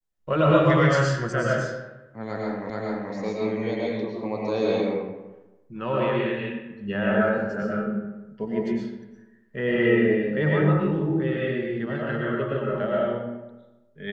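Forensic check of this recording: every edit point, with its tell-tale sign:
0:02.70: the same again, the last 0.43 s

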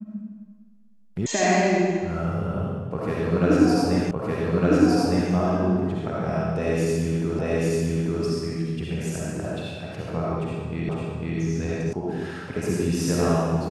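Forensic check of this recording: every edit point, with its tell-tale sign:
0:01.26: cut off before it has died away
0:04.11: the same again, the last 1.21 s
0:07.39: the same again, the last 0.84 s
0:10.89: the same again, the last 0.5 s
0:11.93: cut off before it has died away

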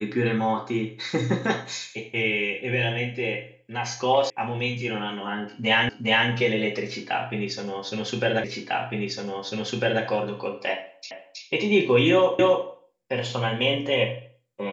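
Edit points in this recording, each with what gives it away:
0:04.30: cut off before it has died away
0:05.89: the same again, the last 0.41 s
0:08.44: the same again, the last 1.6 s
0:11.11: the same again, the last 0.32 s
0:12.39: the same again, the last 0.27 s

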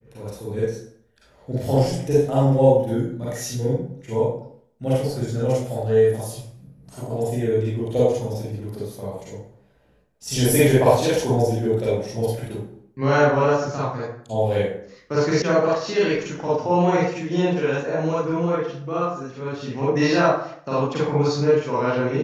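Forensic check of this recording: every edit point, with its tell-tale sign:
0:15.42: cut off before it has died away

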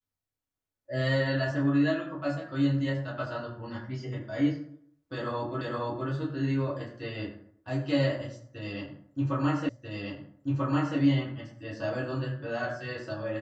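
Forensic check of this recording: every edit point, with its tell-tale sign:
0:05.61: the same again, the last 0.47 s
0:09.69: the same again, the last 1.29 s

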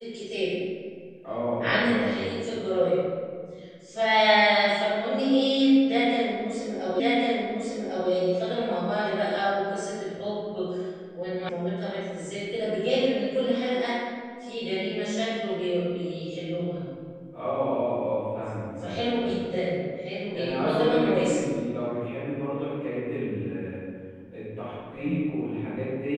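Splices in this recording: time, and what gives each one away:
0:07.00: the same again, the last 1.1 s
0:11.49: cut off before it has died away

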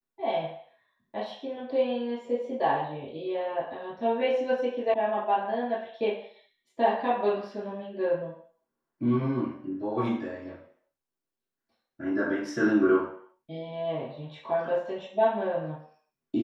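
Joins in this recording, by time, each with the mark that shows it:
0:04.94: cut off before it has died away

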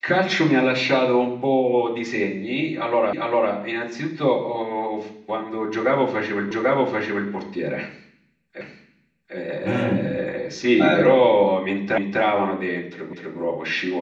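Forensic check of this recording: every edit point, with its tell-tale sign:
0:03.13: the same again, the last 0.4 s
0:06.51: the same again, the last 0.79 s
0:08.61: the same again, the last 0.75 s
0:11.98: the same again, the last 0.25 s
0:13.13: the same again, the last 0.25 s

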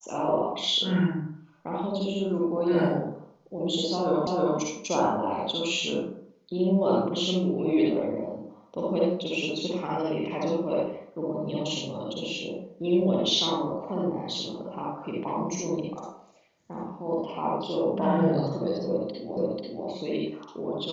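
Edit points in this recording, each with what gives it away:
0:04.27: the same again, the last 0.32 s
0:19.37: the same again, the last 0.49 s

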